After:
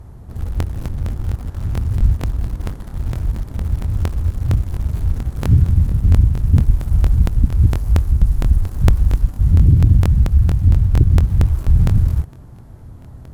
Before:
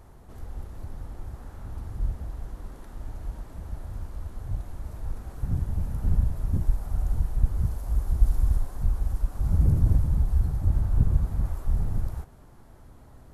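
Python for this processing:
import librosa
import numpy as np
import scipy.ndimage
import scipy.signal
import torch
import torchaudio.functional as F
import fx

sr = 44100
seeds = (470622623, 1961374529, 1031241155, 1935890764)

p1 = fx.quant_dither(x, sr, seeds[0], bits=6, dither='none')
p2 = x + (p1 * 10.0 ** (-8.0 / 20.0))
p3 = fx.dynamic_eq(p2, sr, hz=660.0, q=1.0, threshold_db=-47.0, ratio=4.0, max_db=-5)
p4 = fx.rider(p3, sr, range_db=3, speed_s=0.5)
p5 = fx.peak_eq(p4, sr, hz=99.0, db=13.5, octaves=2.7)
p6 = fx.fold_sine(p5, sr, drive_db=4, ceiling_db=3.5)
p7 = fx.buffer_crackle(p6, sr, first_s=0.58, period_s=0.23, block=1024, kind='repeat')
y = p7 * 10.0 ** (-7.5 / 20.0)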